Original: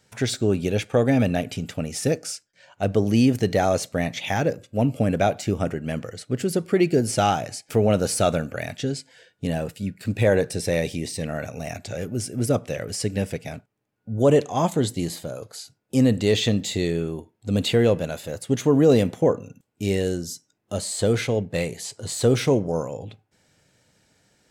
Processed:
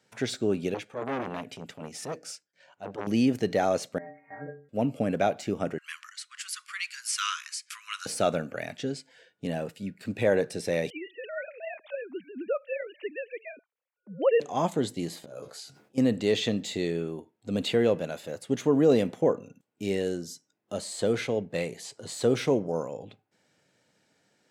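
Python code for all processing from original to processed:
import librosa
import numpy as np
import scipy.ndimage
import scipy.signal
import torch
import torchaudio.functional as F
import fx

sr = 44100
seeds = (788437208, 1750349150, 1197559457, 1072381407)

y = fx.chain(x, sr, fx.transient(attack_db=-10, sustain_db=-4),
    fx.transformer_sat(knee_hz=1400.0), at=(0.74, 3.07))
y = fx.chain(y, sr, fx.steep_lowpass(hz=2100.0, slope=96),
    fx.stiff_resonator(f0_hz=140.0, decay_s=0.45, stiffness=0.008), at=(3.98, 4.69))
y = fx.chain(y, sr, fx.brickwall_bandpass(low_hz=990.0, high_hz=12000.0),
    fx.high_shelf(hz=2500.0, db=8.5), at=(5.78, 8.06))
y = fx.chain(y, sr, fx.sine_speech(),
    fx.tilt_eq(slope=3.0), at=(10.9, 14.4))
y = fx.chain(y, sr, fx.auto_swell(attack_ms=201.0),
    fx.doubler(ms=14.0, db=-2.0),
    fx.sustainer(db_per_s=97.0), at=(15.22, 15.98))
y = scipy.signal.sosfilt(scipy.signal.butter(2, 180.0, 'highpass', fs=sr, output='sos'), y)
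y = fx.high_shelf(y, sr, hz=6300.0, db=-8.0)
y = y * librosa.db_to_amplitude(-4.0)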